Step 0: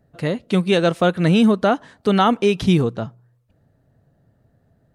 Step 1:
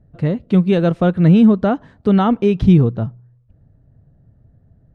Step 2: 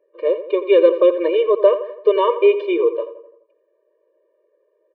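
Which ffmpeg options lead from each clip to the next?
-af "aemphasis=mode=reproduction:type=riaa,volume=-3dB"
-filter_complex "[0:a]highpass=290,equalizer=f=300:t=q:w=4:g=-4,equalizer=f=470:t=q:w=4:g=4,equalizer=f=670:t=q:w=4:g=10,equalizer=f=1k:t=q:w=4:g=4,equalizer=f=1.6k:t=q:w=4:g=-9,equalizer=f=2.4k:t=q:w=4:g=6,lowpass=f=3.3k:w=0.5412,lowpass=f=3.3k:w=1.3066,asplit=2[a][b];[b]adelay=85,lowpass=f=2.4k:p=1,volume=-11.5dB,asplit=2[c][d];[d]adelay=85,lowpass=f=2.4k:p=1,volume=0.52,asplit=2[e][f];[f]adelay=85,lowpass=f=2.4k:p=1,volume=0.52,asplit=2[g][h];[h]adelay=85,lowpass=f=2.4k:p=1,volume=0.52,asplit=2[i][j];[j]adelay=85,lowpass=f=2.4k:p=1,volume=0.52,asplit=2[k][l];[l]adelay=85,lowpass=f=2.4k:p=1,volume=0.52[m];[a][c][e][g][i][k][m]amix=inputs=7:normalize=0,afftfilt=real='re*eq(mod(floor(b*sr/1024/310),2),1)':imag='im*eq(mod(floor(b*sr/1024/310),2),1)':win_size=1024:overlap=0.75,volume=4dB"

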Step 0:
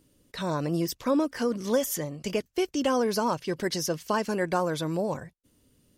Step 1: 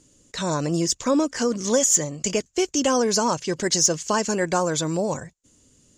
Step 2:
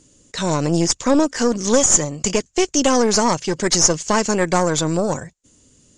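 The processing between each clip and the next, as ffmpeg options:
-af "lowpass=f=7k:t=q:w=8,acontrast=87,volume=-3dB"
-af "aeval=exprs='0.447*(cos(1*acos(clip(val(0)/0.447,-1,1)))-cos(1*PI/2))+0.0708*(cos(4*acos(clip(val(0)/0.447,-1,1)))-cos(4*PI/2))':c=same,aresample=22050,aresample=44100,volume=4dB"

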